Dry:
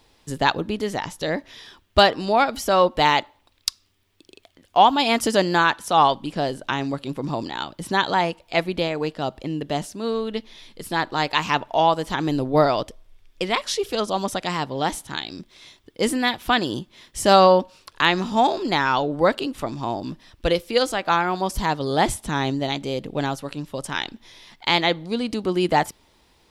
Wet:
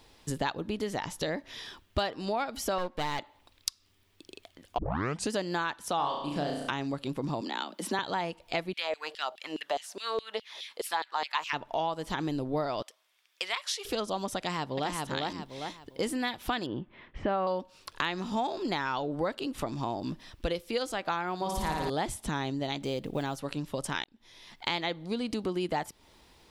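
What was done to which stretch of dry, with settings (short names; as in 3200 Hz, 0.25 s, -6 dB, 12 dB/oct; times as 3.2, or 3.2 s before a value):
2.78–3.19 half-wave gain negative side -12 dB
4.78 tape start 0.53 s
5.96–6.7 flutter echo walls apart 5.9 m, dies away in 0.57 s
7.41–7.99 steep high-pass 190 Hz 72 dB/oct
8.73–11.53 LFO high-pass saw down 4.8 Hz 440–3700 Hz
12.82–13.85 HPF 1100 Hz
14.37–14.92 echo throw 0.4 s, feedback 25%, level -3 dB
16.66–17.47 LPF 2400 Hz 24 dB/oct
21.36–21.9 flutter echo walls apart 9.7 m, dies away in 1.3 s
22.83–23.4 block floating point 7-bit
24.04–24.76 fade in
whole clip: compressor 4:1, threshold -30 dBFS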